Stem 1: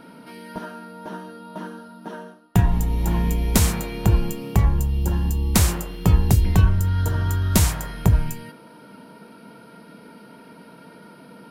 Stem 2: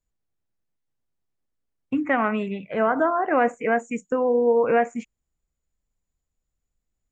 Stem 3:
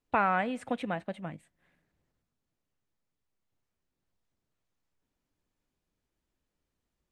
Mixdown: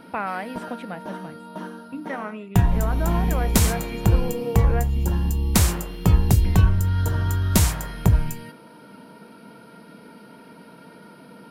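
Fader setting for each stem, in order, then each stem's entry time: −0.5, −10.0, −1.5 decibels; 0.00, 0.00, 0.00 seconds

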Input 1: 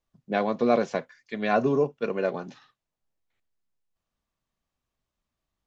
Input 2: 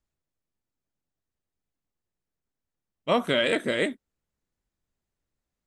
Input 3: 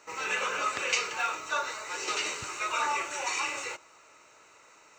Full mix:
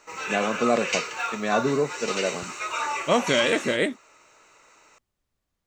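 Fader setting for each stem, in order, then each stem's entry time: −0.5, +2.0, +1.0 decibels; 0.00, 0.00, 0.00 seconds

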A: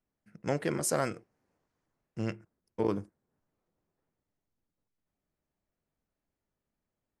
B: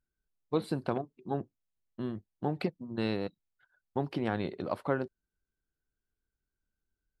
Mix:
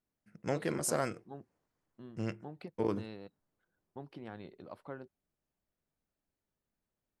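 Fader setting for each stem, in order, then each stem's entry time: −3.0, −14.5 decibels; 0.00, 0.00 seconds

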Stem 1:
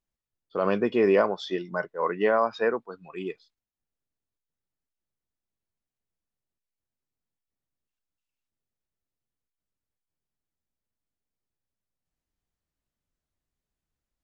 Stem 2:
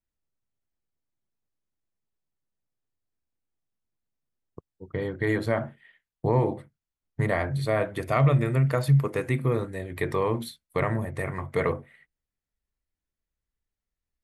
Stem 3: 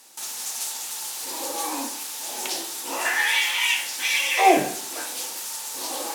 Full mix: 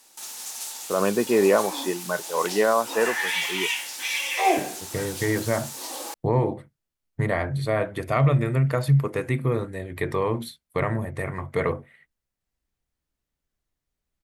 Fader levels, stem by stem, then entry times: +2.0, +1.0, −4.5 decibels; 0.35, 0.00, 0.00 seconds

